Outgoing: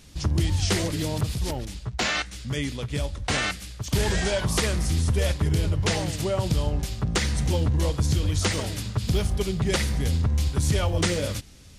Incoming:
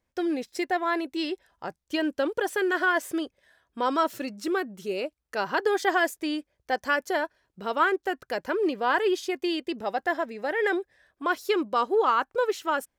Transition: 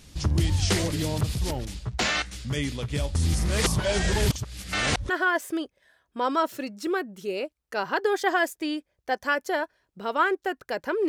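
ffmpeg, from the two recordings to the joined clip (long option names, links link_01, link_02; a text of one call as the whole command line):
ffmpeg -i cue0.wav -i cue1.wav -filter_complex "[0:a]apad=whole_dur=11.08,atrim=end=11.08,asplit=2[link_01][link_02];[link_01]atrim=end=3.152[link_03];[link_02]atrim=start=3.148:end=5.092,asetpts=PTS-STARTPTS,areverse[link_04];[1:a]atrim=start=2.698:end=8.69[link_05];[link_03][link_04]acrossfade=duration=0.004:curve1=hsin:curve2=hsin[link_06];[link_06][link_05]acrossfade=duration=0.004:curve1=hsin:curve2=hsin" out.wav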